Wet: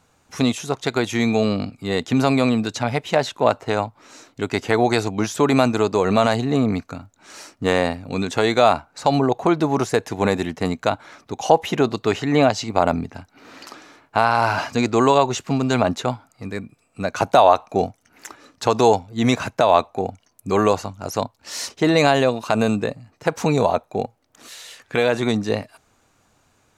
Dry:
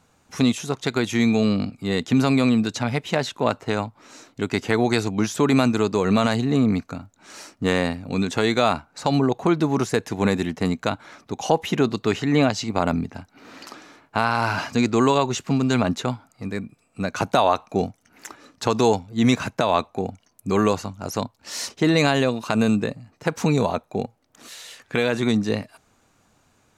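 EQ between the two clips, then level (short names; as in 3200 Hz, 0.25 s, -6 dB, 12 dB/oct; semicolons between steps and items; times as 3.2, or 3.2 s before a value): bell 200 Hz -3.5 dB 0.87 oct; dynamic EQ 690 Hz, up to +6 dB, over -33 dBFS, Q 1.3; +1.0 dB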